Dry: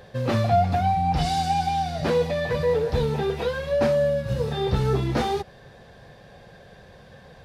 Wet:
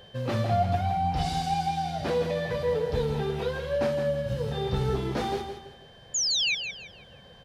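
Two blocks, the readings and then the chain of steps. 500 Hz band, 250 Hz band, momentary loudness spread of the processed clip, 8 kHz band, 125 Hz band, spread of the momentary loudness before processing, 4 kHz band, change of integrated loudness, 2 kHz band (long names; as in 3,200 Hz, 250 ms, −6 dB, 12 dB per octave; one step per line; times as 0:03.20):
−4.5 dB, −4.5 dB, 7 LU, can't be measured, −4.5 dB, 5 LU, +4.5 dB, −4.0 dB, −1.0 dB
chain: hum removal 76.98 Hz, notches 29
sound drawn into the spectrogram fall, 0:06.14–0:06.55, 2,200–7,200 Hz −21 dBFS
steady tone 3,100 Hz −47 dBFS
repeating echo 164 ms, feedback 32%, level −8 dB
level −5 dB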